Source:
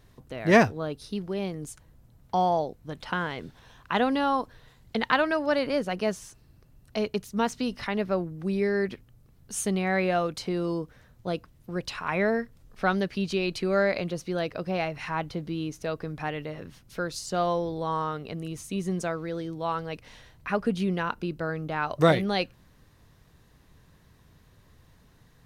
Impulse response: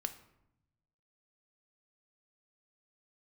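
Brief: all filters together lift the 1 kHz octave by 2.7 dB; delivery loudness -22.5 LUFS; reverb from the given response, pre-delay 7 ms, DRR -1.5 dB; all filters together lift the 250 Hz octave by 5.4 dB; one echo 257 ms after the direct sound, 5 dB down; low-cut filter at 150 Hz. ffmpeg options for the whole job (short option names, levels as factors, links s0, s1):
-filter_complex "[0:a]highpass=150,equalizer=f=250:t=o:g=8.5,equalizer=f=1000:t=o:g=3,aecho=1:1:257:0.562,asplit=2[s0][s1];[1:a]atrim=start_sample=2205,adelay=7[s2];[s1][s2]afir=irnorm=-1:irlink=0,volume=1.26[s3];[s0][s3]amix=inputs=2:normalize=0,volume=0.841"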